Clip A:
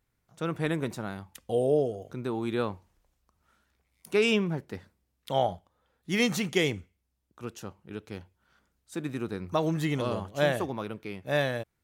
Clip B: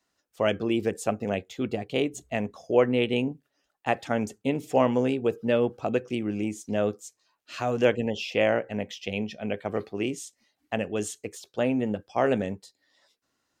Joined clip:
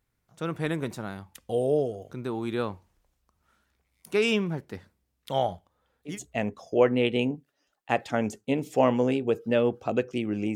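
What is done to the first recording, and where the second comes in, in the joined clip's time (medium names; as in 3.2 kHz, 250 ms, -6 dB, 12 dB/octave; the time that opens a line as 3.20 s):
clip A
6.12 s: go over to clip B from 2.09 s, crossfade 0.14 s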